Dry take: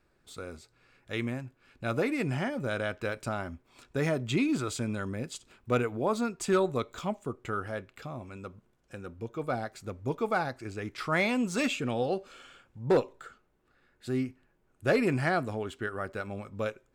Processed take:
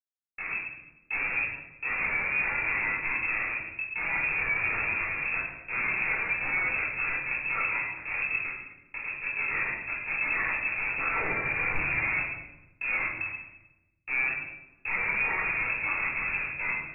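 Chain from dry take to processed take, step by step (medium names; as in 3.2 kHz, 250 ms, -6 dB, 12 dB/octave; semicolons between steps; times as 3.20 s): Schmitt trigger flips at -36 dBFS; frequency inversion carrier 2.6 kHz; simulated room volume 420 m³, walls mixed, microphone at 4.2 m; trim -6.5 dB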